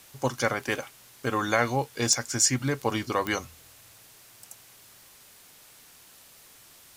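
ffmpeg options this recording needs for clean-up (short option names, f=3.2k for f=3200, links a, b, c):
-af "adeclick=t=4,afftdn=nr=20:nf=-54"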